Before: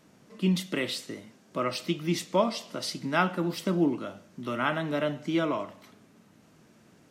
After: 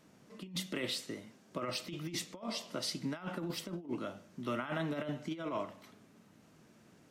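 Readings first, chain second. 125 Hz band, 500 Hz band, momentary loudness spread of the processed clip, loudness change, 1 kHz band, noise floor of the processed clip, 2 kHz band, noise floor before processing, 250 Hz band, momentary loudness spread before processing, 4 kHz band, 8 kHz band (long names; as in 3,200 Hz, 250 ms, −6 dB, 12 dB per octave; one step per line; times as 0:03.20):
−10.5 dB, −11.0 dB, 10 LU, −10.0 dB, −12.0 dB, −63 dBFS, −10.5 dB, −59 dBFS, −11.0 dB, 11 LU, −5.0 dB, −4.0 dB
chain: compressor whose output falls as the input rises −30 dBFS, ratio −0.5
level −7 dB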